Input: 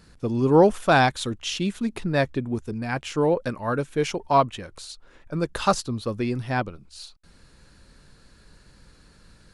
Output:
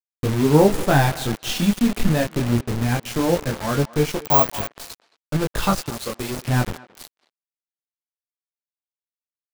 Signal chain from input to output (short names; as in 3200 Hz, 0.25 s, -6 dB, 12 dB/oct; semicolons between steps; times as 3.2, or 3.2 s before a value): CVSD 64 kbps; in parallel at +1 dB: compressor 10:1, threshold -28 dBFS, peak gain reduction 17.5 dB; on the sum: multi-head echo 84 ms, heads all three, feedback 56%, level -24 dB; chorus 0.21 Hz, delay 19 ms, depth 6.4 ms; 1.49–2.1 comb 4.1 ms, depth 70%; 5.89–6.44 tone controls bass -12 dB, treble +10 dB; bit-crush 5-bit; 4.25–4.76 careless resampling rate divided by 2×, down none, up zero stuff; low shelf 160 Hz +11.5 dB; crossover distortion -32 dBFS; speakerphone echo 0.22 s, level -19 dB; gain +1.5 dB